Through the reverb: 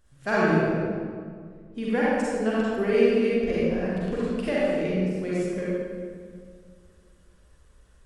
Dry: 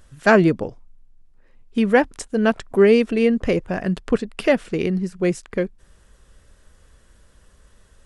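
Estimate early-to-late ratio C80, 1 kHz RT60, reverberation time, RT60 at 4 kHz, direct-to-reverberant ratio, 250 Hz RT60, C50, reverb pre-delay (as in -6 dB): -2.5 dB, 1.9 s, 2.0 s, 1.3 s, -8.5 dB, 2.4 s, -6.0 dB, 37 ms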